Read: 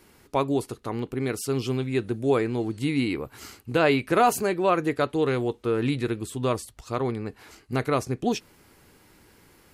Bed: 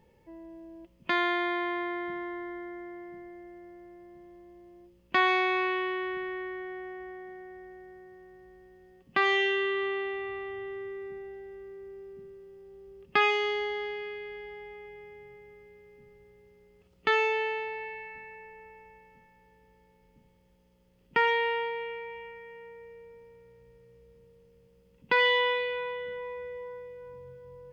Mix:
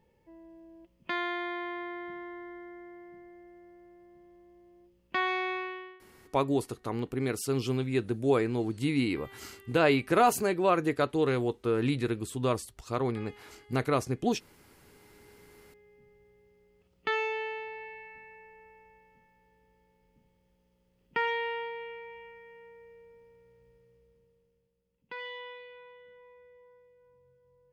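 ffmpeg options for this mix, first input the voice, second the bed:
-filter_complex "[0:a]adelay=6000,volume=-3dB[a];[1:a]volume=16.5dB,afade=t=out:st=5.5:d=0.5:silence=0.0841395,afade=t=in:st=14.81:d=0.82:silence=0.0794328,afade=t=out:st=23.69:d=1.06:silence=0.237137[b];[a][b]amix=inputs=2:normalize=0"

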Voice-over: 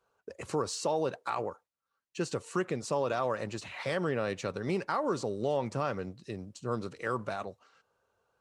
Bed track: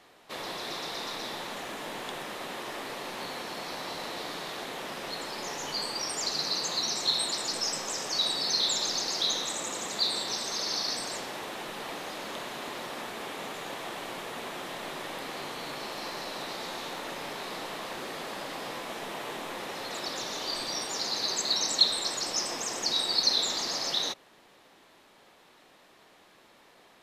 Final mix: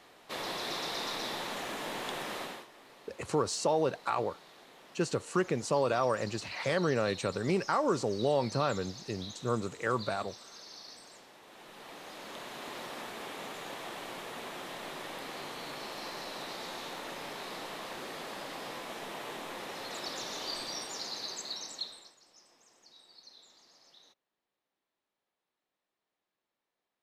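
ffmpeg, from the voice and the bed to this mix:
-filter_complex "[0:a]adelay=2800,volume=2dB[a];[1:a]volume=14dB,afade=t=out:st=2.38:d=0.29:silence=0.125893,afade=t=in:st=11.42:d=1.37:silence=0.199526,afade=t=out:st=20.45:d=1.7:silence=0.0473151[b];[a][b]amix=inputs=2:normalize=0"

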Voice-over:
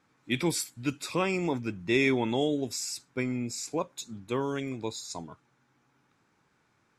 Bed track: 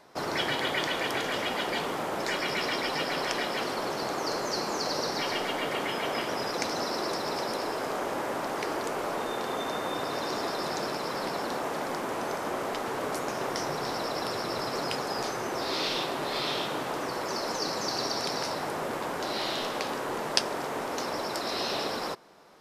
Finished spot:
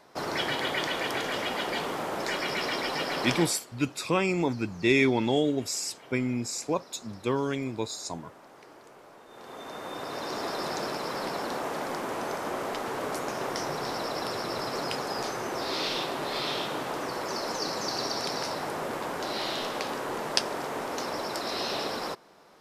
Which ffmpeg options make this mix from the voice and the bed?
-filter_complex "[0:a]adelay=2950,volume=2.5dB[a];[1:a]volume=19dB,afade=t=out:st=3.34:d=0.26:silence=0.105925,afade=t=in:st=9.27:d=1.31:silence=0.105925[b];[a][b]amix=inputs=2:normalize=0"

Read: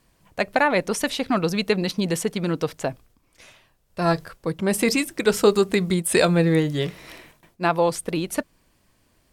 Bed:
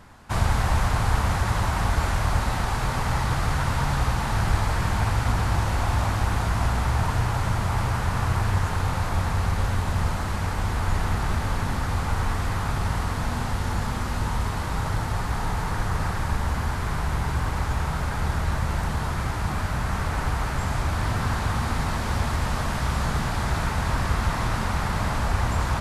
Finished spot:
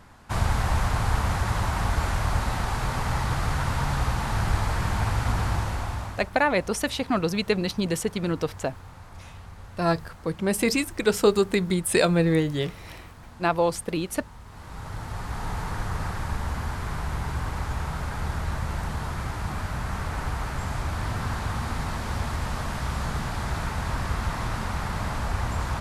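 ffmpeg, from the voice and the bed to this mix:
-filter_complex "[0:a]adelay=5800,volume=-2.5dB[a];[1:a]volume=13.5dB,afade=t=out:st=5.46:d=0.85:silence=0.133352,afade=t=in:st=14.45:d=1.1:silence=0.16788[b];[a][b]amix=inputs=2:normalize=0"

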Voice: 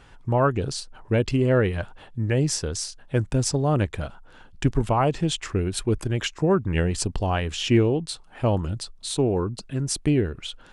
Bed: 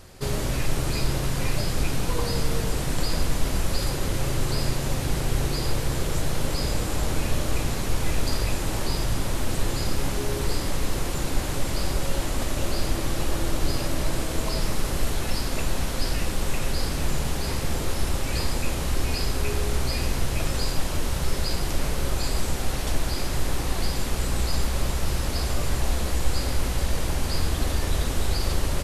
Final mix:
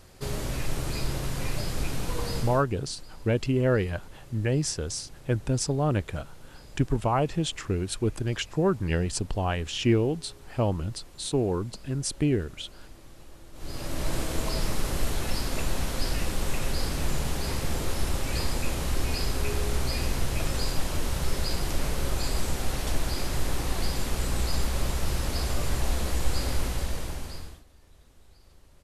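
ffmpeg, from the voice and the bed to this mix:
-filter_complex "[0:a]adelay=2150,volume=-3.5dB[a];[1:a]volume=16dB,afade=t=out:st=2.36:d=0.29:silence=0.11885,afade=t=in:st=13.53:d=0.61:silence=0.0891251,afade=t=out:st=26.56:d=1.07:silence=0.0334965[b];[a][b]amix=inputs=2:normalize=0"

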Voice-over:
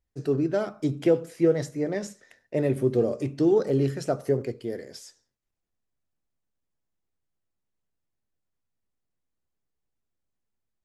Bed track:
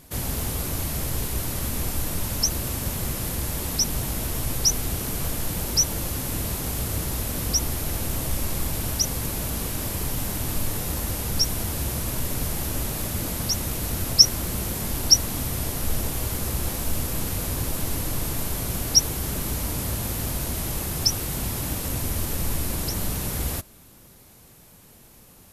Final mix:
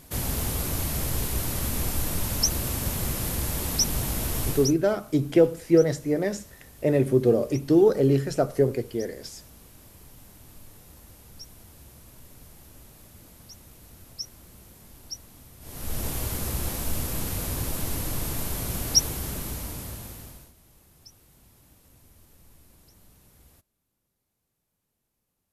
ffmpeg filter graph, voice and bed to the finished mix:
-filter_complex "[0:a]adelay=4300,volume=3dB[a];[1:a]volume=19dB,afade=t=out:st=4.47:d=0.28:silence=0.0841395,afade=t=in:st=15.6:d=0.49:silence=0.105925,afade=t=out:st=19:d=1.53:silence=0.0473151[b];[a][b]amix=inputs=2:normalize=0"

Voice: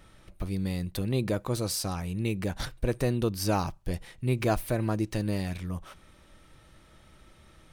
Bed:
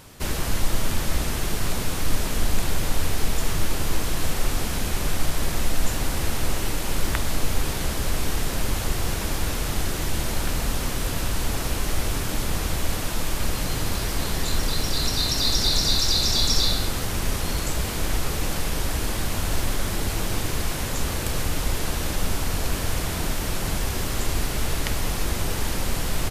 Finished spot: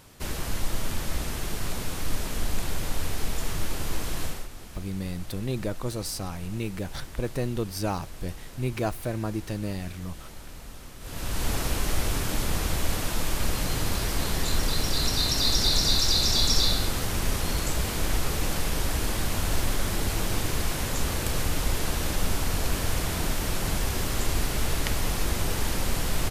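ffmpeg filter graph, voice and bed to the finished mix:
-filter_complex "[0:a]adelay=4350,volume=-2dB[a];[1:a]volume=11dB,afade=t=out:st=4.22:d=0.26:silence=0.237137,afade=t=in:st=11:d=0.49:silence=0.149624[b];[a][b]amix=inputs=2:normalize=0"

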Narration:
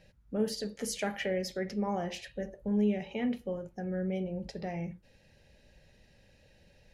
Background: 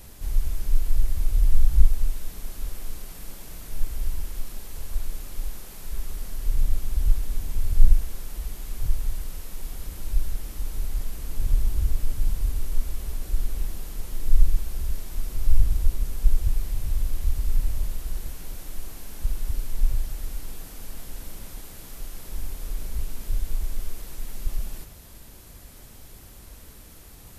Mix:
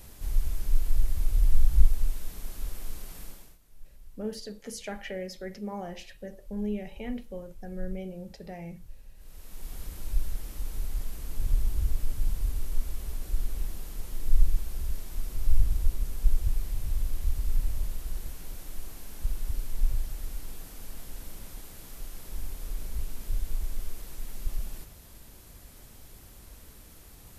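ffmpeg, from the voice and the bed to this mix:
-filter_complex "[0:a]adelay=3850,volume=-4dB[a];[1:a]volume=16dB,afade=t=out:st=3.2:d=0.38:silence=0.1,afade=t=in:st=9.16:d=0.61:silence=0.112202[b];[a][b]amix=inputs=2:normalize=0"

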